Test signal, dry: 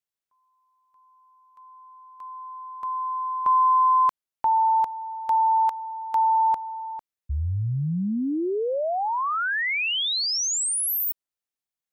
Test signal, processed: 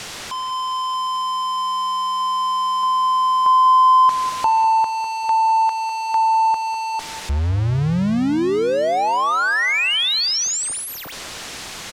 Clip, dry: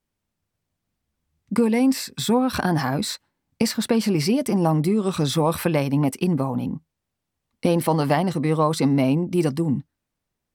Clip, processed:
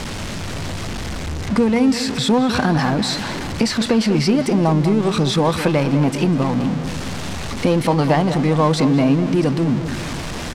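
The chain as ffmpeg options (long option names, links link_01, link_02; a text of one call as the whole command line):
ffmpeg -i in.wav -filter_complex "[0:a]aeval=exprs='val(0)+0.5*0.0596*sgn(val(0))':channel_layout=same,lowpass=6200,asplit=2[link_01][link_02];[link_02]acompressor=threshold=-27dB:ratio=6,volume=-2dB[link_03];[link_01][link_03]amix=inputs=2:normalize=0,asplit=2[link_04][link_05];[link_05]adelay=200,lowpass=frequency=2600:poles=1,volume=-10.5dB,asplit=2[link_06][link_07];[link_07]adelay=200,lowpass=frequency=2600:poles=1,volume=0.55,asplit=2[link_08][link_09];[link_09]adelay=200,lowpass=frequency=2600:poles=1,volume=0.55,asplit=2[link_10][link_11];[link_11]adelay=200,lowpass=frequency=2600:poles=1,volume=0.55,asplit=2[link_12][link_13];[link_13]adelay=200,lowpass=frequency=2600:poles=1,volume=0.55,asplit=2[link_14][link_15];[link_15]adelay=200,lowpass=frequency=2600:poles=1,volume=0.55[link_16];[link_04][link_06][link_08][link_10][link_12][link_14][link_16]amix=inputs=7:normalize=0" out.wav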